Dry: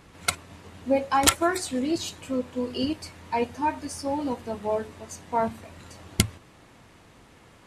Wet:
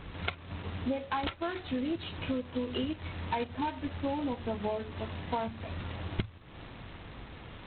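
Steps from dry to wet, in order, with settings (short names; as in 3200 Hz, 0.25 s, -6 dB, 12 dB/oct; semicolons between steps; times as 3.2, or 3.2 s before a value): low shelf 100 Hz +11.5 dB; compressor 16:1, threshold -33 dBFS, peak gain reduction 22 dB; gain +3.5 dB; G.726 16 kbps 8000 Hz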